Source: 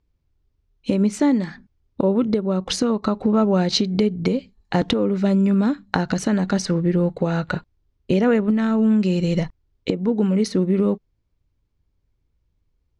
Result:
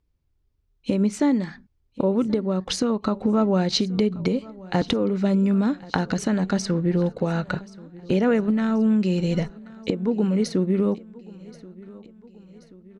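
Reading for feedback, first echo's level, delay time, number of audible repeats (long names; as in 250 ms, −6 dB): 54%, −21.0 dB, 1,081 ms, 3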